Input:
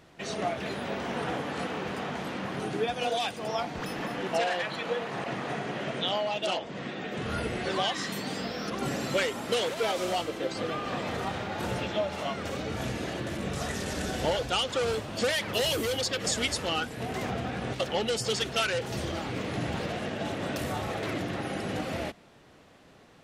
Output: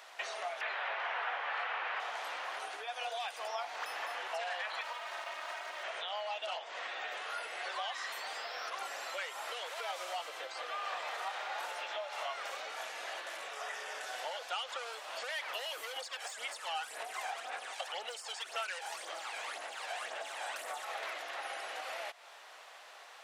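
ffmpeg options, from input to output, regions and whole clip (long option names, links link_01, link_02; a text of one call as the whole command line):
ffmpeg -i in.wav -filter_complex "[0:a]asettb=1/sr,asplit=3[link_01][link_02][link_03];[link_01]atrim=end=0.614[link_04];[link_02]atrim=start=0.61:end=2,asetpts=PTS-STARTPTS,afade=type=in:duration=0.004:curve=qsin,afade=type=out:start_time=1.386:duration=0.004:curve=qsin,highpass=290,lowpass=2900,equalizer=frequency=2000:width=0.53:gain=7.5[link_05];[link_03]atrim=start=1.996[link_06];[link_04][link_05]acrossfade=duration=0.004:curve1=hsin:curve2=qsin[link_07];[link_07][link_06]acrossfade=duration=0.004:curve1=qsin:curve2=hsin,asettb=1/sr,asplit=3[link_08][link_09][link_10];[link_08]atrim=end=4.814[link_11];[link_09]atrim=start=4.81:end=5.84,asetpts=PTS-STARTPTS,afade=type=in:duration=0.004:curve=qsin,afade=type=out:start_time=1.026:duration=0.004:curve=qsin,aeval=exprs='max(val(0),0)':channel_layout=same,aecho=1:1:3.2:0.67,atrim=end_sample=45423[link_12];[link_10]atrim=start=5.836[link_13];[link_11][link_12]acrossfade=duration=0.004:curve1=hsin:curve2=qsin[link_14];[link_14][link_13]acrossfade=duration=0.004:curve1=qsin:curve2=hsin,asettb=1/sr,asplit=3[link_15][link_16][link_17];[link_15]atrim=end=13.534[link_18];[link_16]atrim=start=13.53:end=14.01,asetpts=PTS-STARTPTS,afade=type=in:duration=0.004:curve=qsin,afade=type=out:start_time=0.476:duration=0.004:curve=qsin,bandreject=frequency=4100:width=5.7,aeval=exprs='val(0)+0.0178*sin(2*PI*430*n/s)':channel_layout=same,acrossover=split=4500[link_19][link_20];[link_20]acompressor=threshold=-50dB:ratio=4:attack=1:release=60[link_21];[link_19][link_21]amix=inputs=2:normalize=0[link_22];[link_17]atrim=start=14.006[link_23];[link_18][link_22]acrossfade=duration=0.004:curve1=hsin:curve2=qsin[link_24];[link_24][link_23]acrossfade=duration=0.004:curve1=qsin:curve2=hsin,asettb=1/sr,asplit=3[link_25][link_26][link_27];[link_25]atrim=end=15.964[link_28];[link_26]atrim=start=15.96:end=20.85,asetpts=PTS-STARTPTS,afade=type=in:duration=0.004:curve=qsin,afade=type=out:start_time=4.886:duration=0.004:curve=qsin,equalizer=frequency=8700:width=1.3:gain=9.5,aphaser=in_gain=1:out_gain=1:delay=1.3:decay=0.53:speed=1.9:type=sinusoidal,aeval=exprs='clip(val(0),-1,0.119)':channel_layout=same[link_29];[link_27]atrim=start=20.846[link_30];[link_28][link_29]acrossfade=duration=0.004:curve1=hsin:curve2=qsin[link_31];[link_31][link_30]acrossfade=duration=0.004:curve1=qsin:curve2=hsin,acompressor=threshold=-40dB:ratio=6,highpass=frequency=700:width=0.5412,highpass=frequency=700:width=1.3066,acrossover=split=2800[link_32][link_33];[link_33]acompressor=threshold=-53dB:ratio=4:attack=1:release=60[link_34];[link_32][link_34]amix=inputs=2:normalize=0,volume=7dB" out.wav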